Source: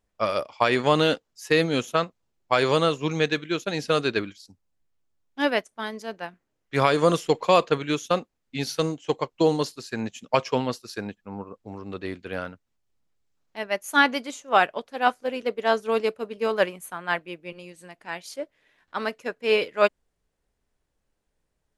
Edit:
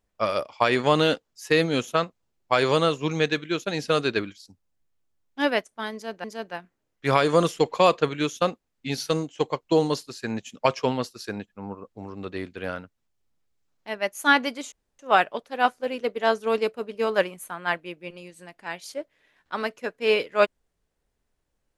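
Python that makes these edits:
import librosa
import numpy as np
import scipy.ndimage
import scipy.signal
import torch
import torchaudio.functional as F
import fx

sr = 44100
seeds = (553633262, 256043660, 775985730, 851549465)

y = fx.edit(x, sr, fx.repeat(start_s=5.93, length_s=0.31, count=2),
    fx.insert_room_tone(at_s=14.41, length_s=0.27), tone=tone)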